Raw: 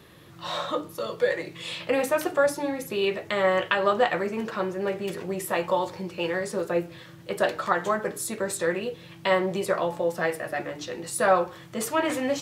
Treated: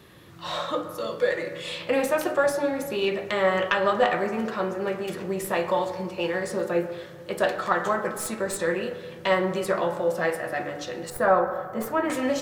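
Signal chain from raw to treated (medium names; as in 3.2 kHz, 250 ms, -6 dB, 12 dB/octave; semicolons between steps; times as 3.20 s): tracing distortion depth 0.021 ms; 11.10–12.10 s: high-order bell 4.9 kHz -12 dB 2.4 oct; on a send: reverberation RT60 1.8 s, pre-delay 25 ms, DRR 7 dB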